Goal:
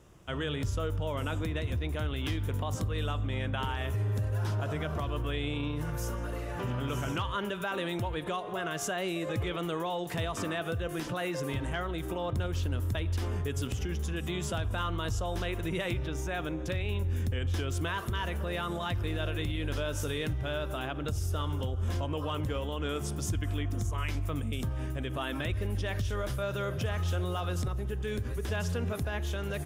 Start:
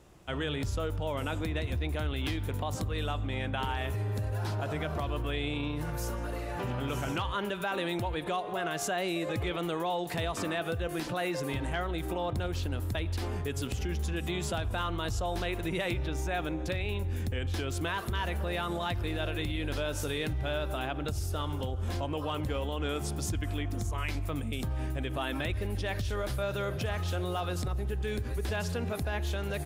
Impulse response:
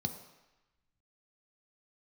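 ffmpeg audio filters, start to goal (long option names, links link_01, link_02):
-filter_complex "[0:a]asplit=2[link_01][link_02];[link_02]equalizer=frequency=170:width=0.76:gain=-13.5[link_03];[1:a]atrim=start_sample=2205,atrim=end_sample=3087,asetrate=42777,aresample=44100[link_04];[link_03][link_04]afir=irnorm=-1:irlink=0,volume=-13dB[link_05];[link_01][link_05]amix=inputs=2:normalize=0"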